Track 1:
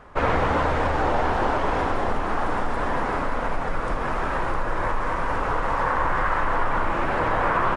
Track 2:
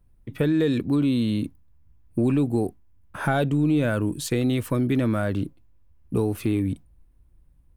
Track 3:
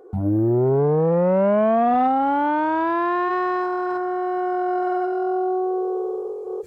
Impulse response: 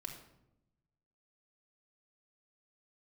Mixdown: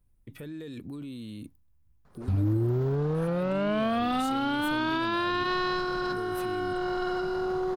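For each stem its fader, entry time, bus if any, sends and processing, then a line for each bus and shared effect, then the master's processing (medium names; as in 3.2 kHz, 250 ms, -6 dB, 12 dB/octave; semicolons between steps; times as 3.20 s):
-17.5 dB, 2.05 s, bus A, no send, median filter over 15 samples; peaking EQ 160 Hz +13 dB 1.1 oct
-8.5 dB, 0.00 s, bus A, no send, none
+2.5 dB, 2.15 s, no bus, no send, FFT filter 120 Hz 0 dB, 190 Hz -9 dB, 280 Hz -6 dB, 500 Hz -12 dB, 890 Hz -16 dB, 1.3 kHz -2 dB, 2 kHz -6 dB, 2.9 kHz +8 dB, 4.4 kHz +14 dB, 7.4 kHz +1 dB
bus A: 0.0 dB, treble shelf 4 kHz +7.5 dB; peak limiter -32.5 dBFS, peak gain reduction 15 dB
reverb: none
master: peak limiter -20 dBFS, peak gain reduction 5.5 dB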